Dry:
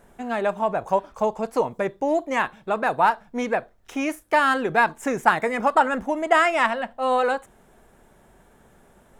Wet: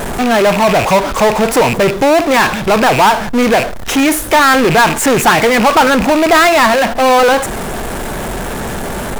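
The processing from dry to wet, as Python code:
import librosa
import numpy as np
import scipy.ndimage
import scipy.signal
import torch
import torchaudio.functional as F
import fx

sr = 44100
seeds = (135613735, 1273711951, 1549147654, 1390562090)

y = fx.rattle_buzz(x, sr, strikes_db=-47.0, level_db=-26.0)
y = fx.power_curve(y, sr, exponent=0.35)
y = y * 10.0 ** (1.5 / 20.0)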